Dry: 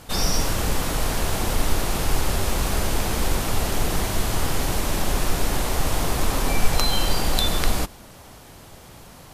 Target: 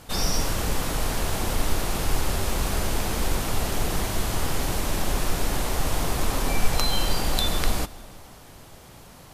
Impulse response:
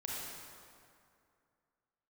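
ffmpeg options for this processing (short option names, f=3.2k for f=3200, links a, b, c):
-filter_complex "[0:a]asplit=2[a][b];[1:a]atrim=start_sample=2205,asetrate=41895,aresample=44100,adelay=135[c];[b][c]afir=irnorm=-1:irlink=0,volume=-21.5dB[d];[a][d]amix=inputs=2:normalize=0,volume=-2.5dB"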